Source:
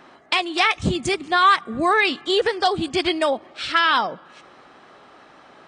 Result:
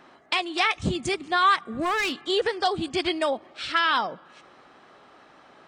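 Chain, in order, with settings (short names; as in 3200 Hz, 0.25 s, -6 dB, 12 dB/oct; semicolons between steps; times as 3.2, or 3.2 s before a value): 1.71–2.18 overloaded stage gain 17.5 dB; gain -4.5 dB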